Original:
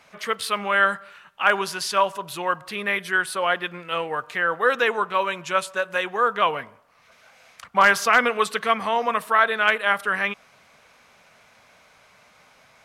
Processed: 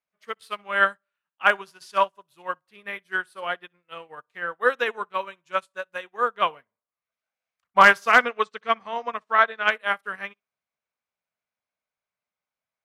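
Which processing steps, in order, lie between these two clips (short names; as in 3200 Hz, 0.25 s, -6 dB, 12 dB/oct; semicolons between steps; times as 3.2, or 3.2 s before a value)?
8.23–9.71 Chebyshev low-pass 6600 Hz, order 3; flutter echo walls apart 10.7 m, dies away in 0.21 s; upward expander 2.5:1, over -41 dBFS; gain +3.5 dB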